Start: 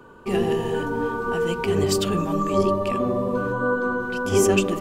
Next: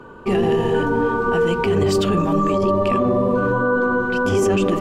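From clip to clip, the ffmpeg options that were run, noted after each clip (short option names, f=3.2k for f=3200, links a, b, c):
-af "lowpass=f=3.3k:p=1,alimiter=limit=-17.5dB:level=0:latency=1:release=13,volume=7dB"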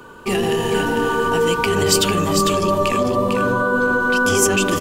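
-filter_complex "[0:a]crystalizer=i=6.5:c=0,asplit=2[a][b];[b]aecho=0:1:450:0.531[c];[a][c]amix=inputs=2:normalize=0,volume=-2.5dB"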